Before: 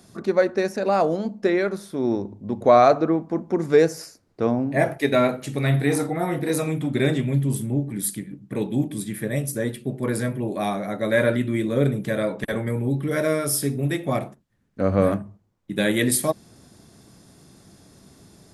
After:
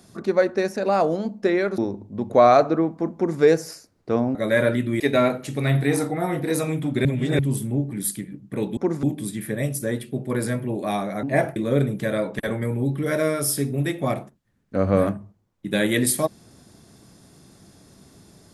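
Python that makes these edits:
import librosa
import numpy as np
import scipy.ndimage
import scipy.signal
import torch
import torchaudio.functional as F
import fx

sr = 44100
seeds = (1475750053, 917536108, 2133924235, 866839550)

y = fx.edit(x, sr, fx.cut(start_s=1.78, length_s=0.31),
    fx.duplicate(start_s=3.46, length_s=0.26, to_s=8.76),
    fx.swap(start_s=4.66, length_s=0.33, other_s=10.96, other_length_s=0.65),
    fx.reverse_span(start_s=7.04, length_s=0.34), tone=tone)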